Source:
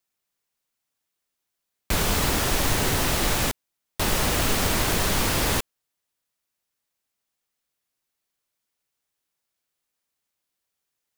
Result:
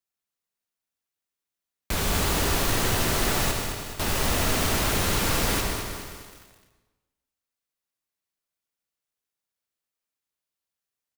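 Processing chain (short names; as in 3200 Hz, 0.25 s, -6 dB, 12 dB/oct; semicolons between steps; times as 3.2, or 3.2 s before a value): sample leveller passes 1; feedback echo 0.155 s, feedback 60%, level -13 dB; on a send at -3 dB: reverb RT60 1.1 s, pre-delay 58 ms; on the sum: lo-fi delay 0.211 s, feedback 55%, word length 6-bit, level -8 dB; gain -7 dB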